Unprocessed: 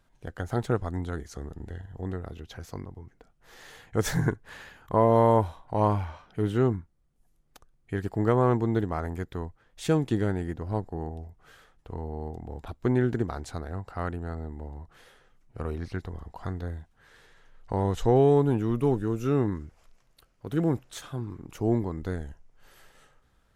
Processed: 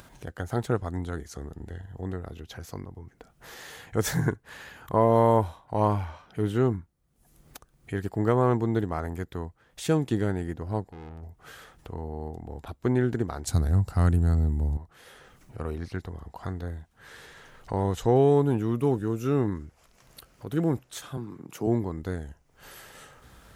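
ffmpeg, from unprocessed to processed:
-filter_complex "[0:a]asettb=1/sr,asplit=3[s0][s1][s2];[s0]atrim=end=10.834[s3];[s1]atrim=start=10.83:end=11.23,asetpts=PTS-STARTPTS,afade=t=in:d=0.004:c=qsin,afade=t=out:st=0.396:d=0.004:c=qsin,aeval=exprs='(tanh(100*val(0)+0.5)-tanh(0.5))/100':c=same[s4];[s2]atrim=start=11.226[s5];[s3][s4]acrossfade=d=0.004:c1=hsin:c2=qsin[s6];[s6][s5]acrossfade=d=0.004:c1=qsin:c2=hsin,asettb=1/sr,asplit=3[s7][s8][s9];[s7]atrim=end=13.474[s10];[s8]atrim=start=13.47:end=14.77,asetpts=PTS-STARTPTS,afade=t=in:d=0.004:c=qsin,afade=t=out:st=1.296:d=0.004:c=qsin,bass=f=250:g=15,treble=f=4000:g=13[s11];[s9]atrim=start=14.766[s12];[s10][s11]acrossfade=d=0.004:c1=hsin:c2=qsin[s13];[s13][s12]acrossfade=d=0.004:c1=qsin:c2=hsin,asettb=1/sr,asplit=3[s14][s15][s16];[s14]atrim=end=21.174[s17];[s15]atrim=start=21.17:end=21.67,asetpts=PTS-STARTPTS,afade=t=in:d=0.004:c=qsin,afade=t=out:st=0.496:d=0.004:c=qsin,highpass=f=130:w=0.5412,highpass=f=130:w=1.3066[s18];[s16]atrim=start=21.666[s19];[s17][s18]acrossfade=d=0.004:c1=hsin:c2=qsin[s20];[s20][s19]acrossfade=d=0.004:c1=qsin:c2=hsin,highpass=48,highshelf=f=8900:g=6.5,acompressor=mode=upward:threshold=0.0141:ratio=2.5"

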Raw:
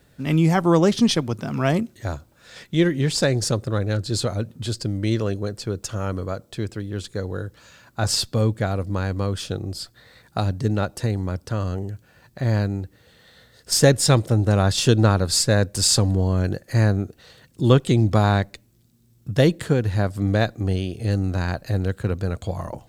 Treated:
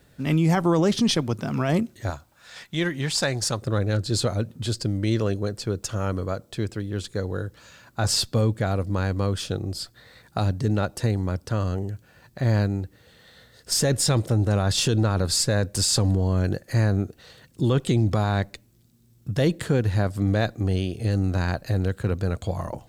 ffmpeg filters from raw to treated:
-filter_complex "[0:a]asettb=1/sr,asplit=3[s0][s1][s2];[s0]atrim=end=2.104[s3];[s1]atrim=start=2.1:end=3.62,asetpts=PTS-STARTPTS,afade=t=in:d=0.004:c=qsin,afade=t=out:st=1.516:d=0.004:c=qsin,lowshelf=f=610:t=q:w=1.5:g=-6[s4];[s2]atrim=start=3.616[s5];[s3][s4]acrossfade=d=0.004:c1=hsin:c2=qsin[s6];[s6][s5]acrossfade=d=0.004:c1=qsin:c2=hsin,alimiter=limit=0.224:level=0:latency=1:release=15"

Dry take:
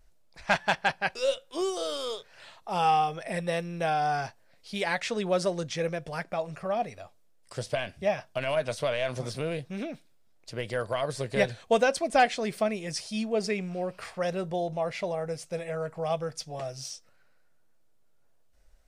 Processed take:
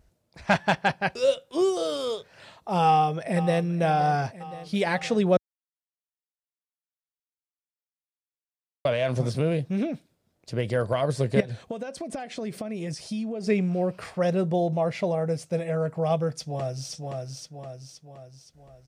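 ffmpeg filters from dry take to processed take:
-filter_complex "[0:a]asplit=2[s0][s1];[s1]afade=t=in:st=2.84:d=0.01,afade=t=out:st=3.63:d=0.01,aecho=0:1:520|1040|1560|2080|2600|3120|3640|4160|4680:0.177828|0.12448|0.0871357|0.060995|0.0426965|0.0298875|0.0209213|0.0146449|0.0102514[s2];[s0][s2]amix=inputs=2:normalize=0,asettb=1/sr,asplit=3[s3][s4][s5];[s3]atrim=end=11.404[s6];[s4]atrim=start=11.4:end=13.47,asetpts=PTS-STARTPTS,afade=t=in:d=0.004:c=qsin,afade=t=out:st=2.066:d=0.004:c=qsin,acompressor=threshold=0.0178:ratio=16:attack=3.2:release=140:knee=1:detection=peak[s7];[s5]atrim=start=13.466[s8];[s6][s7]acrossfade=d=0.004:c1=hsin:c2=qsin[s9];[s9][s8]acrossfade=d=0.004:c1=qsin:c2=hsin,asplit=2[s10][s11];[s11]afade=t=in:st=16.36:d=0.01,afade=t=out:st=16.93:d=0.01,aecho=0:1:520|1040|1560|2080|2600|3120|3640:0.668344|0.334172|0.167086|0.083543|0.0417715|0.0208857|0.0104429[s12];[s10][s12]amix=inputs=2:normalize=0,asplit=3[s13][s14][s15];[s13]atrim=end=5.37,asetpts=PTS-STARTPTS,afade=t=out:st=5.366:d=0.004:c=hsin[s16];[s14]atrim=start=5.37:end=8.85,asetpts=PTS-STARTPTS,volume=0[s17];[s15]atrim=start=8.85,asetpts=PTS-STARTPTS,afade=t=in:d=0.004:c=hsin[s18];[s16][s17][s18]concat=n=3:v=0:a=1,highpass=72,lowshelf=f=480:g=11.5"

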